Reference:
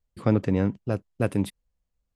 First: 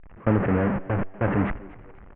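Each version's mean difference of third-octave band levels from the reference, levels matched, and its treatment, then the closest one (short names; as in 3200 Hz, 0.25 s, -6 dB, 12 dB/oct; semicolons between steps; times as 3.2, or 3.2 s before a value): 8.0 dB: delta modulation 16 kbps, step -18 dBFS; gate with hold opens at -15 dBFS; LPF 1900 Hz 24 dB/oct; on a send: frequency-shifting echo 0.243 s, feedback 33%, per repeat +93 Hz, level -20.5 dB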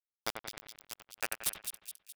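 17.5 dB: HPF 110 Hz 24 dB/oct; differentiator; bit-crush 6-bit; on a send: split-band echo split 3000 Hz, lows 89 ms, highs 0.21 s, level -6.5 dB; on the sum: gain +9.5 dB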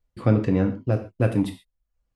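3.0 dB: reverb removal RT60 0.5 s; high shelf 6100 Hz -11 dB; in parallel at -5 dB: soft clip -25 dBFS, distortion -6 dB; on the sum: non-linear reverb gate 0.16 s falling, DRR 4.5 dB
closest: third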